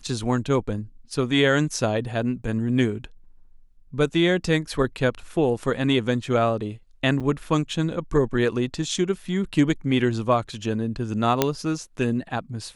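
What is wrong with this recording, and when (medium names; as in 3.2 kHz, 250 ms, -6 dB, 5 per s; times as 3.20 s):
7.20–7.21 s: dropout 6.6 ms
11.42 s: pop -3 dBFS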